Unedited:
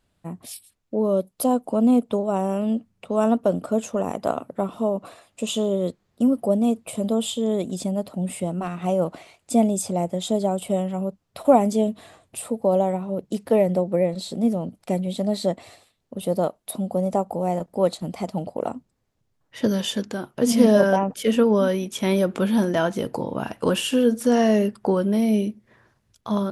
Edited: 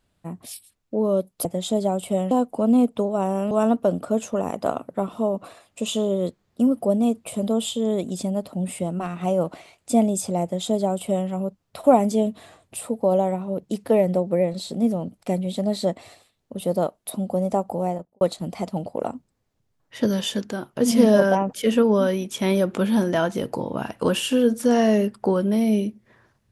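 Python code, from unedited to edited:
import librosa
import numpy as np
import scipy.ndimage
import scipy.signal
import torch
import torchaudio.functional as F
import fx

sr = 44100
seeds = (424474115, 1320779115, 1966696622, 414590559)

y = fx.studio_fade_out(x, sr, start_s=17.4, length_s=0.42)
y = fx.edit(y, sr, fx.cut(start_s=2.65, length_s=0.47),
    fx.duplicate(start_s=10.04, length_s=0.86, to_s=1.45), tone=tone)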